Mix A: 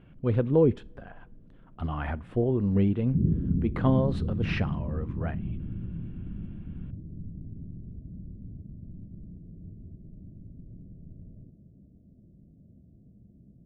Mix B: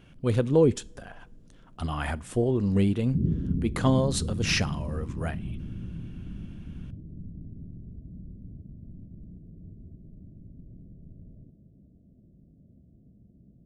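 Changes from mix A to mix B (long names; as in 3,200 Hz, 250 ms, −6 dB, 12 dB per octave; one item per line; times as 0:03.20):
background: send −10.5 dB
master: remove high-frequency loss of the air 490 metres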